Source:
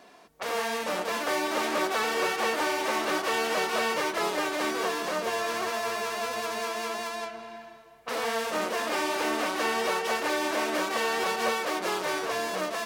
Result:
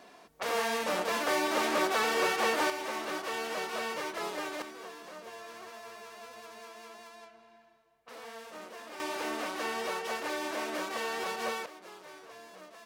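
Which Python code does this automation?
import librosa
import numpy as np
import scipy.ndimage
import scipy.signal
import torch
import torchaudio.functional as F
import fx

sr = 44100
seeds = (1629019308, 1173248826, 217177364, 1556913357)

y = fx.gain(x, sr, db=fx.steps((0.0, -1.0), (2.7, -8.0), (4.62, -16.5), (9.0, -7.0), (11.66, -20.0)))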